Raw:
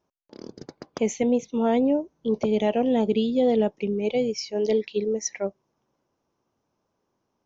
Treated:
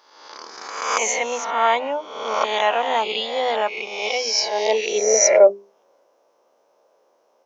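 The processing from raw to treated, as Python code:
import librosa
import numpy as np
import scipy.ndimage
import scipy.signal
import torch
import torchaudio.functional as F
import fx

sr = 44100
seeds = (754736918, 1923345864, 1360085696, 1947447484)

y = fx.spec_swells(x, sr, rise_s=0.96)
y = fx.hum_notches(y, sr, base_hz=50, count=8)
y = fx.filter_sweep_highpass(y, sr, from_hz=1100.0, to_hz=540.0, start_s=4.26, end_s=5.4, q=3.3)
y = y * librosa.db_to_amplitude(8.5)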